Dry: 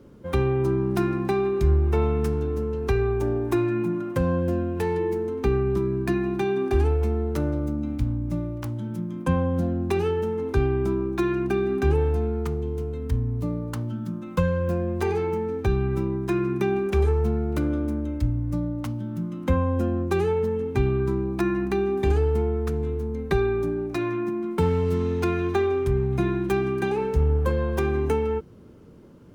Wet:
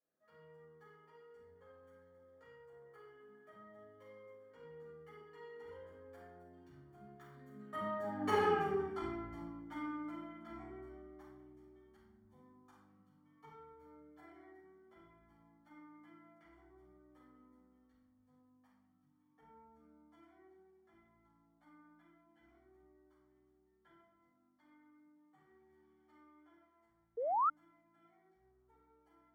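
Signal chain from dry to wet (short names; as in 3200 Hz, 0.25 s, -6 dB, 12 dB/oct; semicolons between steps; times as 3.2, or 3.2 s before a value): Doppler pass-by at 8.4, 57 m/s, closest 11 m; shoebox room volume 280 m³, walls mixed, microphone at 5.9 m; painted sound rise, 27.17–27.5, 440–1400 Hz -18 dBFS; polynomial smoothing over 41 samples; differentiator; gain +3.5 dB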